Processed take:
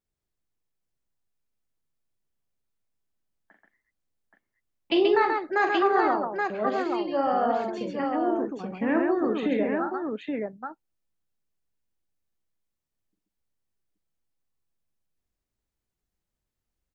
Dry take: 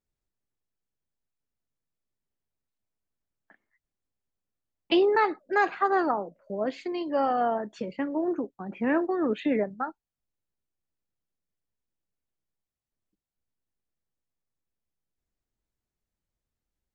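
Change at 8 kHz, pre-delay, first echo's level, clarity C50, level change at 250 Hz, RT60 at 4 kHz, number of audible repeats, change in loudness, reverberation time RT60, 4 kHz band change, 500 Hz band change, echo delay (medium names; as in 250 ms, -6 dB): no reading, no reverb, -7.0 dB, no reverb, +2.0 dB, no reverb, 3, +1.5 dB, no reverb, +2.0 dB, +2.0 dB, 43 ms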